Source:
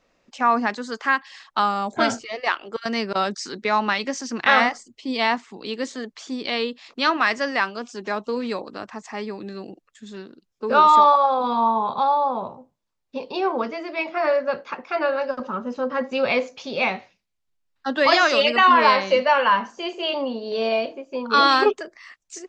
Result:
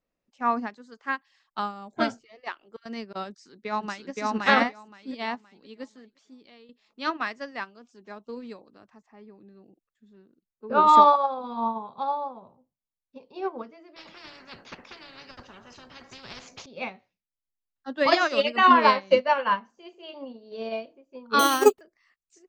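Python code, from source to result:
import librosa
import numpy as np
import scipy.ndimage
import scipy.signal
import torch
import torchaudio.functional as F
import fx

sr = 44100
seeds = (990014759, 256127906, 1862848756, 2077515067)

y = fx.echo_throw(x, sr, start_s=3.29, length_s=0.81, ms=520, feedback_pct=40, wet_db=0.0)
y = fx.lowpass(y, sr, hz=1700.0, slope=6, at=(9.01, 10.86), fade=0.02)
y = fx.spectral_comp(y, sr, ratio=10.0, at=(13.96, 16.66))
y = fx.resample_bad(y, sr, factor=6, down='none', up='hold', at=(21.39, 21.81))
y = fx.edit(y, sr, fx.fade_out_to(start_s=5.95, length_s=0.74, floor_db=-11.0), tone=tone)
y = fx.low_shelf(y, sr, hz=380.0, db=8.0)
y = fx.upward_expand(y, sr, threshold_db=-25.0, expansion=2.5)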